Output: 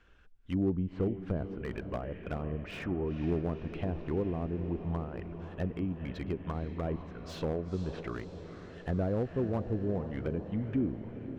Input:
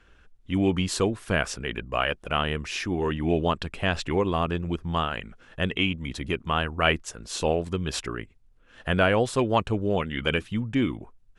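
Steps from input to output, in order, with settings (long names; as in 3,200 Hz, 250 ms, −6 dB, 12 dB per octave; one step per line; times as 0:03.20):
treble cut that deepens with the level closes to 460 Hz, closed at −22.5 dBFS
high-frequency loss of the air 51 metres
feedback delay with all-pass diffusion 489 ms, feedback 64%, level −11 dB
slew-rate limiting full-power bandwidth 45 Hz
level −5.5 dB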